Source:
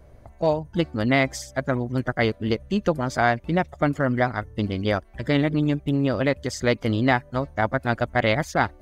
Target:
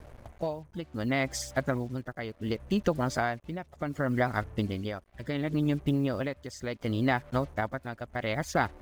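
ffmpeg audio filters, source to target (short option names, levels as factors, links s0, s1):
-af "acrusher=bits=7:mix=0:aa=0.5,acompressor=threshold=0.0708:ratio=3,tremolo=f=0.69:d=0.73"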